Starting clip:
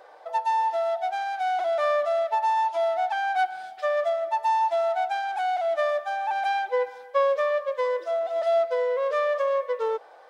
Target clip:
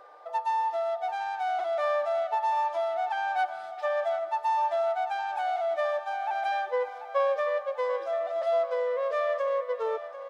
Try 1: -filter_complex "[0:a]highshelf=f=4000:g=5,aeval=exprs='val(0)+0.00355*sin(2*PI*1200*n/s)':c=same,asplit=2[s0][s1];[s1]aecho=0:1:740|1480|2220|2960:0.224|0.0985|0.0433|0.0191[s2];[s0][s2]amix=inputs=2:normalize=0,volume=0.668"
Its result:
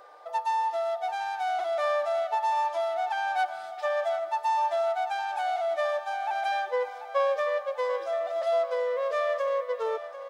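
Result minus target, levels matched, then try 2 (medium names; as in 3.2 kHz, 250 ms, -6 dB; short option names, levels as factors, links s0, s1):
8 kHz band +6.0 dB
-filter_complex "[0:a]highshelf=f=4000:g=-3.5,aeval=exprs='val(0)+0.00355*sin(2*PI*1200*n/s)':c=same,asplit=2[s0][s1];[s1]aecho=0:1:740|1480|2220|2960:0.224|0.0985|0.0433|0.0191[s2];[s0][s2]amix=inputs=2:normalize=0,volume=0.668"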